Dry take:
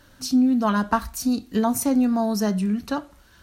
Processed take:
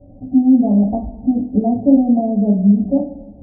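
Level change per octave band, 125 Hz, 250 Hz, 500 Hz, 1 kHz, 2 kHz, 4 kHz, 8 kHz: +10.5 dB, +8.0 dB, +5.0 dB, -2.5 dB, under -40 dB, under -40 dB, under -40 dB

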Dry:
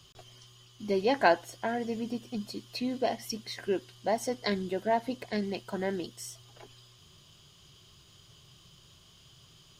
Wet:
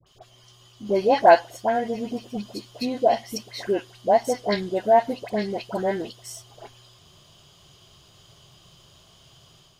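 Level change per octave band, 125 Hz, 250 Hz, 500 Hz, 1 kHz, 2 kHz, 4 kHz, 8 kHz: +4.0 dB, +4.0 dB, +9.5 dB, +10.5 dB, +4.0 dB, +3.5 dB, +3.5 dB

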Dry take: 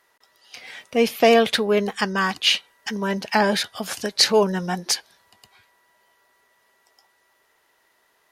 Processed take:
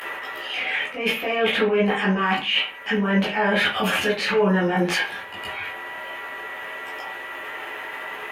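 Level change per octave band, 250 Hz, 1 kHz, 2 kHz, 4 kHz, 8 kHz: +1.5 dB, -0.5 dB, +4.5 dB, -2.5 dB, -11.0 dB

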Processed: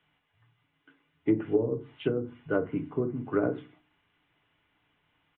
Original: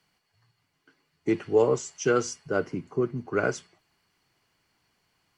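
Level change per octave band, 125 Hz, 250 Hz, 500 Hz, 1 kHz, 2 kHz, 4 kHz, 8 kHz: -1.0 dB, +0.5 dB, -4.5 dB, -8.5 dB, -8.0 dB, -8.5 dB, under -40 dB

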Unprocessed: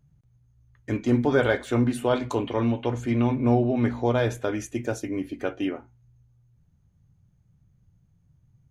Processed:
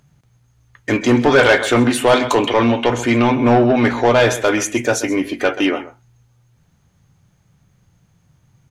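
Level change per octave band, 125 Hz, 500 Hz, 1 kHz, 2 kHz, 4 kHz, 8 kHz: +4.0 dB, +10.5 dB, +13.5 dB, +15.0 dB, +17.0 dB, +17.5 dB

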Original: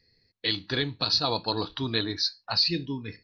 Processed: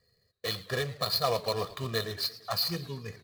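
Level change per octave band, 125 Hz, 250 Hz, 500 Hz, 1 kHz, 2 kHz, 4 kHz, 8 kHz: -1.5 dB, -9.5 dB, +1.0 dB, -1.0 dB, -3.5 dB, -6.0 dB, no reading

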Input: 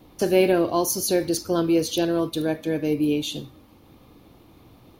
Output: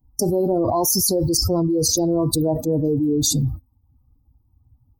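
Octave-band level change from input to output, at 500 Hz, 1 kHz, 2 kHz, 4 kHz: +1.0 dB, +2.5 dB, under -30 dB, +5.5 dB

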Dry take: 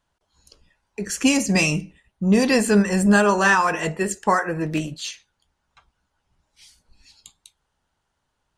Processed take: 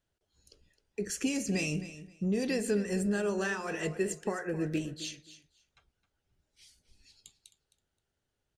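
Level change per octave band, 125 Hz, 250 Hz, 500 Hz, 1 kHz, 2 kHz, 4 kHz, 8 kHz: -11.5 dB, -12.5 dB, -10.0 dB, -21.0 dB, -16.0 dB, -13.0 dB, -11.5 dB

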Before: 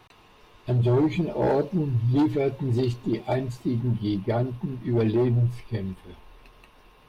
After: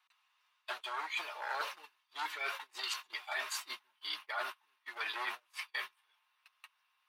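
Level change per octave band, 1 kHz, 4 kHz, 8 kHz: -6.0 dB, +3.5 dB, no reading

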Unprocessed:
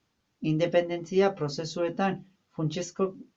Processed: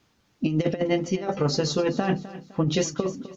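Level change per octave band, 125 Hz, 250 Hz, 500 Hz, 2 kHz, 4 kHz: +5.5 dB, +4.5 dB, +1.0 dB, +1.5 dB, +7.0 dB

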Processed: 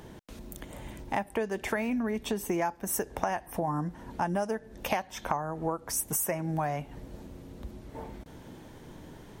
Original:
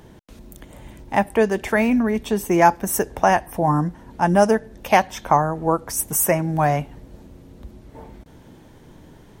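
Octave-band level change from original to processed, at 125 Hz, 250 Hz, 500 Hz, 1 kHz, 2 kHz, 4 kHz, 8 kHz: -11.5 dB, -11.5 dB, -12.5 dB, -13.5 dB, -12.0 dB, -7.5 dB, -8.5 dB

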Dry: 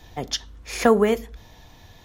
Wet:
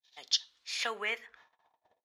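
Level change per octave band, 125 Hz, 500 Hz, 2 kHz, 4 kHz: no reading, -23.5 dB, -4.5 dB, -0.5 dB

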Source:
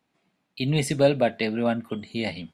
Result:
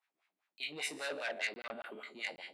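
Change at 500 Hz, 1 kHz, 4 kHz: -20.5 dB, -14.5 dB, -8.5 dB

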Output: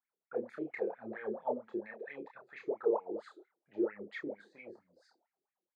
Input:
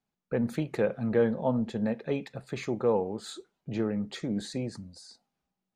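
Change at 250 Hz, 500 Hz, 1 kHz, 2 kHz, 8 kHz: -12.0 dB, -7.0 dB, -5.5 dB, -5.0 dB, under -25 dB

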